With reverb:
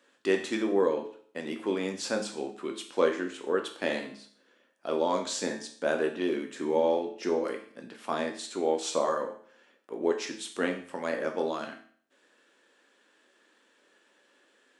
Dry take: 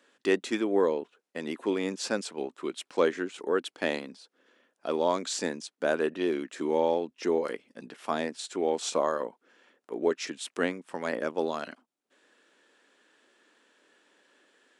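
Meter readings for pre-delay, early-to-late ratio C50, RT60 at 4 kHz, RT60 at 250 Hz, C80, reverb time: 9 ms, 9.5 dB, 0.50 s, 0.50 s, 13.0 dB, 0.55 s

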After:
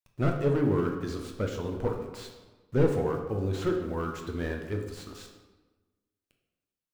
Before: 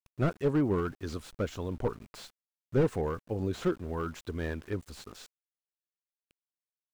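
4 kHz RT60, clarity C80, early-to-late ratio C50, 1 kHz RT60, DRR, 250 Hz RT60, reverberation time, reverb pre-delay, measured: 0.85 s, 8.0 dB, 5.5 dB, 1.2 s, 2.0 dB, 1.5 s, 1.2 s, 9 ms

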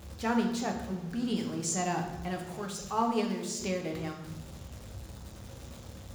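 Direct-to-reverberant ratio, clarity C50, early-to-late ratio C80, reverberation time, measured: 2.0 dB, 7.0 dB, 9.0 dB, 1.1 s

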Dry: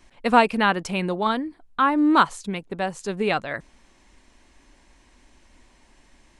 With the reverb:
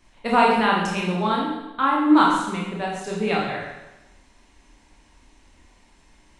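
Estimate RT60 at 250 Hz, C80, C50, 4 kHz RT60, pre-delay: 0.95 s, 4.5 dB, 1.5 dB, 0.95 s, 20 ms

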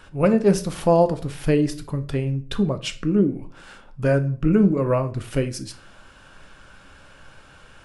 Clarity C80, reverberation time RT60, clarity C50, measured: 20.5 dB, 0.45 s, 15.5 dB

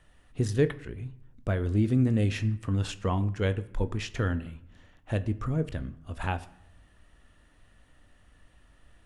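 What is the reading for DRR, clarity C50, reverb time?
12.0 dB, 17.5 dB, 0.75 s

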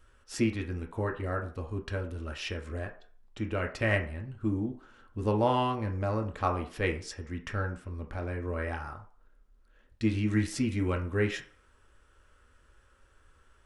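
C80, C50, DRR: 15.0 dB, 11.0 dB, 2.0 dB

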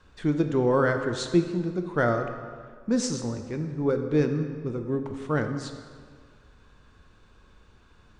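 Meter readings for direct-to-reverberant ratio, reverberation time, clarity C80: 6.0 dB, 1.8 s, 9.0 dB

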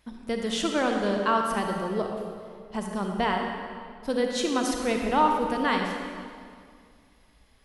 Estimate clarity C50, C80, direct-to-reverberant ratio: 2.5 dB, 3.5 dB, 2.0 dB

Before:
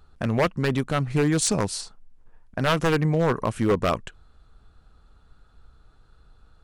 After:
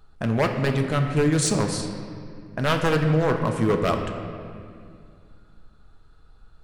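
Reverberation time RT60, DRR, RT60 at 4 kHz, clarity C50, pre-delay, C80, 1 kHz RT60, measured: 2.2 s, 3.5 dB, 1.6 s, 5.5 dB, 5 ms, 6.5 dB, 2.1 s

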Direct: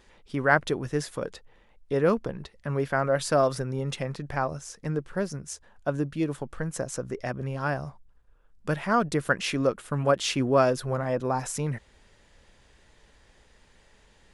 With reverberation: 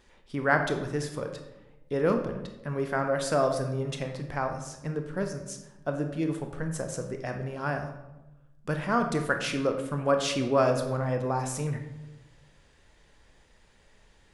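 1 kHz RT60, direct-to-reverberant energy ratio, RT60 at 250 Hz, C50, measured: 0.95 s, 5.0 dB, 1.2 s, 7.5 dB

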